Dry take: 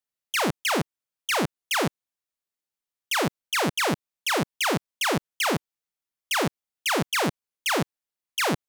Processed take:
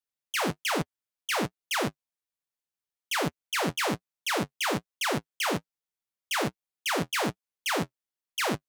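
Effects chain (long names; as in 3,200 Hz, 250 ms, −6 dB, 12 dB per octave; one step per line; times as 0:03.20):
flanger 1.2 Hz, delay 5.8 ms, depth 6.3 ms, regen −36%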